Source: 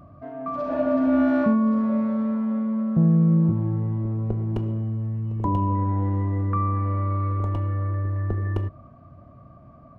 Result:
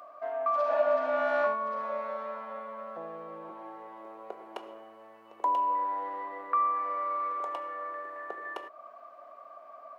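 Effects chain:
in parallel at 0 dB: downward compressor, threshold −34 dBFS, peak gain reduction 17.5 dB
on the sum: high-pass filter 590 Hz 24 dB per octave

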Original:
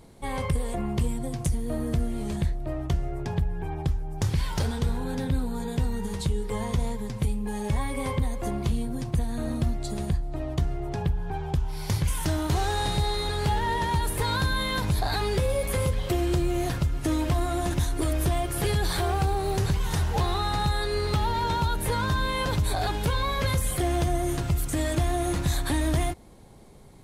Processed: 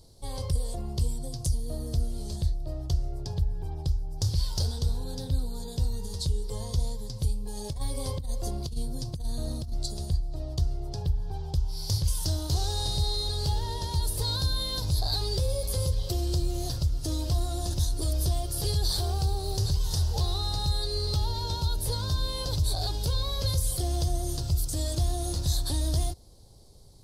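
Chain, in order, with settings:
drawn EQ curve 100 Hz 0 dB, 200 Hz −12 dB, 550 Hz −6 dB, 2,200 Hz −20 dB, 4,800 Hz +9 dB, 6,900 Hz 0 dB
0:07.57–0:09.86: compressor whose output falls as the input rises −28 dBFS, ratio −0.5

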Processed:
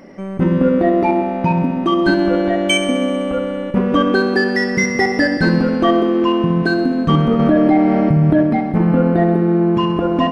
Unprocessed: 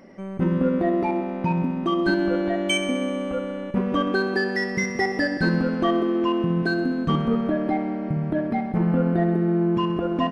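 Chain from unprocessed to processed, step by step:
feedback delay network reverb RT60 1.8 s, low-frequency decay 1.05×, high-frequency decay 0.85×, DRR 10.5 dB
0:07.39–0:08.43: envelope flattener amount 70%
level +7.5 dB

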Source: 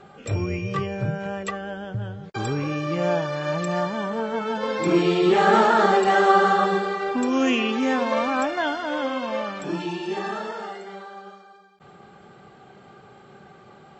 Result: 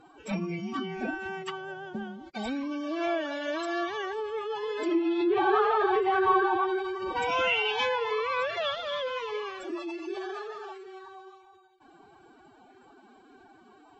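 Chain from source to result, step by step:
phase-vocoder pitch shift with formants kept +11.5 semitones
treble cut that deepens with the level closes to 2,200 Hz, closed at −16 dBFS
dynamic equaliser 3,300 Hz, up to +7 dB, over −42 dBFS, Q 1.1
level −6.5 dB

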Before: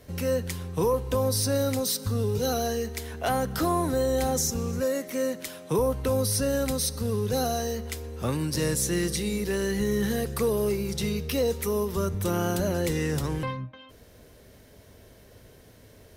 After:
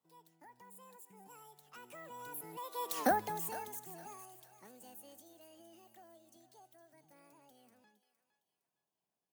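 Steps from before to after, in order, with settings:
source passing by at 0:05.22, 25 m/s, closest 1.3 metres
high-pass filter 120 Hz 12 dB per octave
high-shelf EQ 5,000 Hz +8 dB
on a send: feedback echo with a high-pass in the loop 799 ms, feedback 38%, high-pass 620 Hz, level −12 dB
on the sum: wrong playback speed 45 rpm record played at 78 rpm
level +5.5 dB

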